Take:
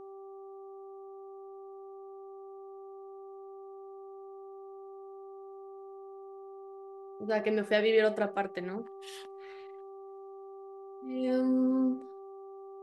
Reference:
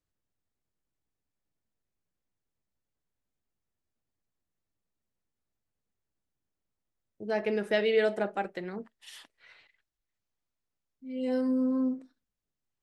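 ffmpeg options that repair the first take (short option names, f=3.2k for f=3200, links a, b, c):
-af "bandreject=f=389.9:t=h:w=4,bandreject=f=779.8:t=h:w=4,bandreject=f=1.1697k:t=h:w=4"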